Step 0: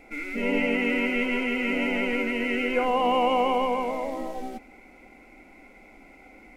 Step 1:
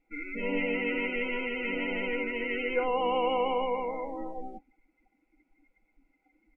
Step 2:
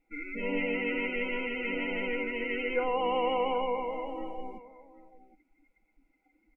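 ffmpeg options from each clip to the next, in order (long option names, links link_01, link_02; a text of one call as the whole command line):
ffmpeg -i in.wav -af "bandreject=frequency=650:width=12,afftdn=noise_reduction=22:noise_floor=-36,aecho=1:1:6.2:0.48,volume=-5.5dB" out.wav
ffmpeg -i in.wav -af "aecho=1:1:768:0.141,volume=-1dB" out.wav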